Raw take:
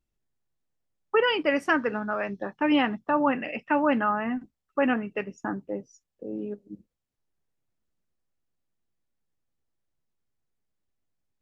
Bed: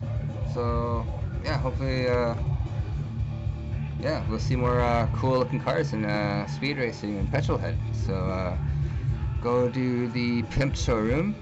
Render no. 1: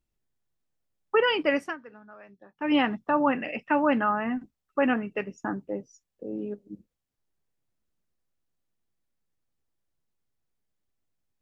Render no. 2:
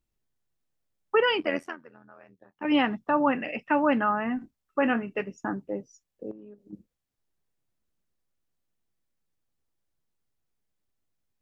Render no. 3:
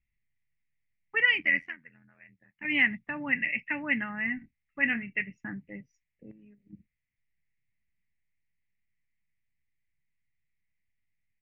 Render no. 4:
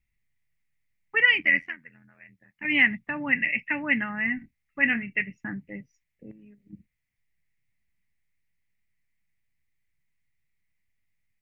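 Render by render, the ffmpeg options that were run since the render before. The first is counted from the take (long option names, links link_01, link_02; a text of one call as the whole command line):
ffmpeg -i in.wav -filter_complex "[0:a]asplit=3[link_01][link_02][link_03];[link_01]atrim=end=1.76,asetpts=PTS-STARTPTS,afade=type=out:start_time=1.54:duration=0.22:silence=0.105925[link_04];[link_02]atrim=start=1.76:end=2.54,asetpts=PTS-STARTPTS,volume=-19.5dB[link_05];[link_03]atrim=start=2.54,asetpts=PTS-STARTPTS,afade=type=in:duration=0.22:silence=0.105925[link_06];[link_04][link_05][link_06]concat=n=3:v=0:a=1" out.wav
ffmpeg -i in.wav -filter_complex "[0:a]asettb=1/sr,asplit=3[link_01][link_02][link_03];[link_01]atrim=end=1.404[link_04];[link_02]atrim=start=1.4:end=2.65,asetpts=PTS-STARTPTS,afade=type=in:duration=0.004:curve=qsin,afade=type=out:start_time=1.246:duration=0.004:curve=qsin,tremolo=f=84:d=0.857[link_05];[link_03]atrim=start=2.646[link_06];[link_04][link_05]acrossfade=duration=0.004:curve1=hsin:curve2=qsin[link_07];[link_07][link_06]acrossfade=duration=0.004:curve1=qsin:curve2=hsin,asettb=1/sr,asplit=3[link_08][link_09][link_10];[link_08]atrim=end=4.364[link_11];[link_09]atrim=start=4.36:end=5.22,asetpts=PTS-STARTPTS,afade=type=in:duration=0.004:curve=qsin,afade=type=out:start_time=0.856:duration=0.004:curve=qsin,asplit=2[link_12][link_13];[link_13]adelay=26,volume=-11dB[link_14];[link_12][link_14]amix=inputs=2:normalize=0,atrim=end_sample=37926[link_15];[link_10]atrim=start=5.216[link_16];[link_11][link_15]acrossfade=duration=0.004:curve1=hsin:curve2=qsin[link_17];[link_17][link_16]acrossfade=duration=0.004:curve1=qsin:curve2=hsin,asettb=1/sr,asplit=3[link_18][link_19][link_20];[link_18]atrim=end=6.314[link_21];[link_19]atrim=start=6.31:end=6.73,asetpts=PTS-STARTPTS,afade=type=in:duration=0.004:curve=qsin,afade=type=out:start_time=0.416:duration=0.004:curve=qsin,acompressor=threshold=-43dB:ratio=12:attack=3.2:release=140:knee=1:detection=peak[link_22];[link_20]atrim=start=6.726[link_23];[link_21][link_22]acrossfade=duration=0.004:curve1=hsin:curve2=qsin[link_24];[link_24][link_23]acrossfade=duration=0.004:curve1=qsin:curve2=hsin" out.wav
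ffmpeg -i in.wav -af "firequalizer=gain_entry='entry(140,0);entry(390,-18);entry(1300,-17);entry(2000,13);entry(3300,-9);entry(8200,-28)':delay=0.05:min_phase=1" out.wav
ffmpeg -i in.wav -af "volume=4dB" out.wav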